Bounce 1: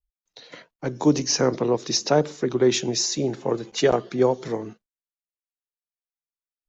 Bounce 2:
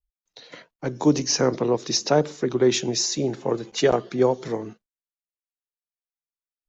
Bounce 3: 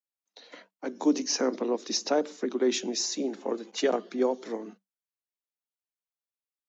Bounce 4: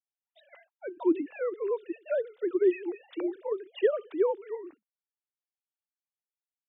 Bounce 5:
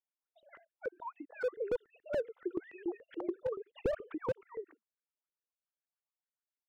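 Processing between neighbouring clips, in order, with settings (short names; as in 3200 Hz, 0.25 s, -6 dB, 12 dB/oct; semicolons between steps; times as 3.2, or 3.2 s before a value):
nothing audible
dynamic EQ 850 Hz, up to -4 dB, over -34 dBFS, Q 1.1; rippled Chebyshev high-pass 190 Hz, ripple 3 dB; gain -3 dB
sine-wave speech; gain -1 dB
random spectral dropouts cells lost 32%; LFO band-pass saw up 7 Hz 390–1800 Hz; slew limiter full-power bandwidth 11 Hz; gain +4.5 dB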